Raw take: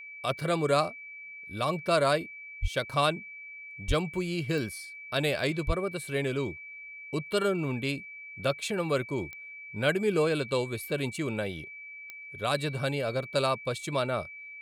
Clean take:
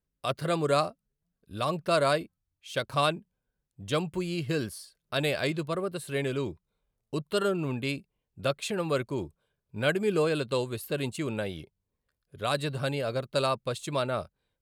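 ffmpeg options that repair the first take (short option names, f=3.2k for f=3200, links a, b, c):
-filter_complex "[0:a]adeclick=t=4,bandreject=f=2.3k:w=30,asplit=3[a][b][c];[a]afade=t=out:st=2.61:d=0.02[d];[b]highpass=f=140:w=0.5412,highpass=f=140:w=1.3066,afade=t=in:st=2.61:d=0.02,afade=t=out:st=2.73:d=0.02[e];[c]afade=t=in:st=2.73:d=0.02[f];[d][e][f]amix=inputs=3:normalize=0,asplit=3[g][h][i];[g]afade=t=out:st=3.87:d=0.02[j];[h]highpass=f=140:w=0.5412,highpass=f=140:w=1.3066,afade=t=in:st=3.87:d=0.02,afade=t=out:st=3.99:d=0.02[k];[i]afade=t=in:st=3.99:d=0.02[l];[j][k][l]amix=inputs=3:normalize=0,asplit=3[m][n][o];[m]afade=t=out:st=5.66:d=0.02[p];[n]highpass=f=140:w=0.5412,highpass=f=140:w=1.3066,afade=t=in:st=5.66:d=0.02,afade=t=out:st=5.78:d=0.02[q];[o]afade=t=in:st=5.78:d=0.02[r];[p][q][r]amix=inputs=3:normalize=0"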